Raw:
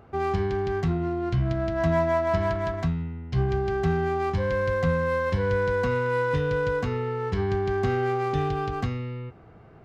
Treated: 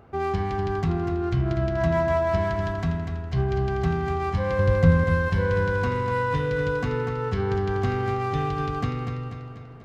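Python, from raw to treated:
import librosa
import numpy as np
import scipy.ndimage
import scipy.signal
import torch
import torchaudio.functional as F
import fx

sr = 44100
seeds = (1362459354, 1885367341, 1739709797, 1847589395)

p1 = fx.low_shelf(x, sr, hz=260.0, db=10.5, at=(4.59, 5.04))
y = p1 + fx.echo_feedback(p1, sr, ms=244, feedback_pct=52, wet_db=-7.0, dry=0)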